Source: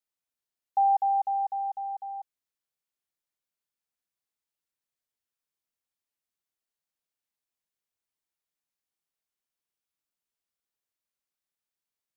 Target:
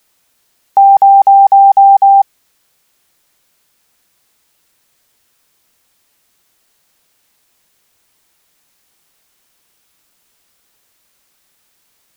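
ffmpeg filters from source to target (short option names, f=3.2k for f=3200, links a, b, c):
-af "apsyclip=32.5dB,volume=-1.5dB"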